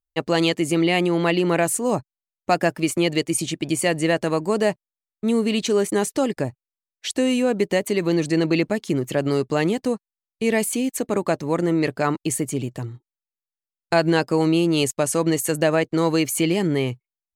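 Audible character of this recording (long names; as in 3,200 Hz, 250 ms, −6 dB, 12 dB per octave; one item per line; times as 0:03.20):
background noise floor −93 dBFS
spectral slope −4.5 dB per octave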